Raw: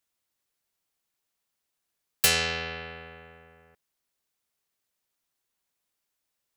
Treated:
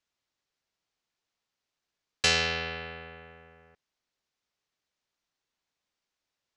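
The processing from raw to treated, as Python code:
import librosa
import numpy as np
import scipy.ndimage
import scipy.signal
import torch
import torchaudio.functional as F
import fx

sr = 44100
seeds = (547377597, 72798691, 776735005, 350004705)

y = scipy.signal.sosfilt(scipy.signal.butter(4, 6300.0, 'lowpass', fs=sr, output='sos'), x)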